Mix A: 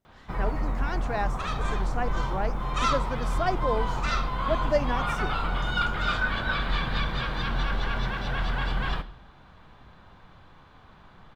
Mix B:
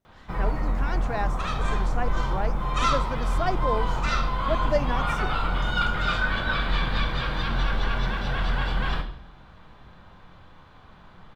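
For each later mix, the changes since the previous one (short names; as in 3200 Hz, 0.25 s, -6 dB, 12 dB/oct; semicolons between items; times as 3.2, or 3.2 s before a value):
background: send +8.5 dB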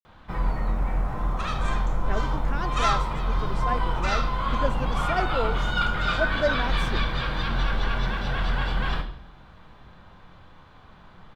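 speech: entry +1.70 s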